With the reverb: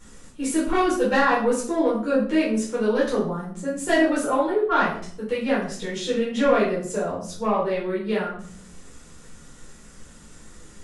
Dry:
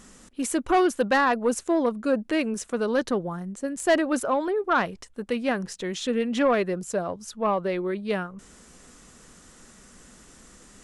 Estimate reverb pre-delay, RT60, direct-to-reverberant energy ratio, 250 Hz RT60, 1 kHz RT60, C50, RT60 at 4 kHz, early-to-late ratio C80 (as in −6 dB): 6 ms, 0.50 s, −7.5 dB, 0.85 s, 0.45 s, 5.5 dB, 0.45 s, 9.0 dB